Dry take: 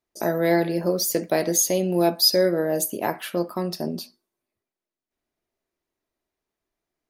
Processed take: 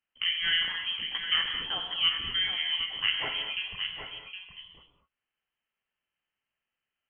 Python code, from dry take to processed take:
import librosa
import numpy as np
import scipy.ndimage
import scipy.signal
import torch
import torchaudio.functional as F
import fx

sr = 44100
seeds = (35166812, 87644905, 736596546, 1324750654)

y = scipy.signal.sosfilt(scipy.signal.butter(4, 690.0, 'highpass', fs=sr, output='sos'), x)
y = fx.echo_multitap(y, sr, ms=(246, 764), db=(-18.5, -8.5))
y = fx.rev_gated(y, sr, seeds[0], gate_ms=260, shape='flat', drr_db=4.5)
y = fx.freq_invert(y, sr, carrier_hz=3700)